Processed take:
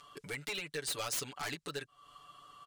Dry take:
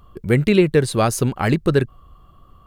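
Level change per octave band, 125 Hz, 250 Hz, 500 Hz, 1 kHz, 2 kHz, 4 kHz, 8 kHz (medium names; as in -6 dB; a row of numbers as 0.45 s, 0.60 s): -31.5 dB, -31.0 dB, -25.5 dB, -19.0 dB, -14.0 dB, -8.5 dB, -9.0 dB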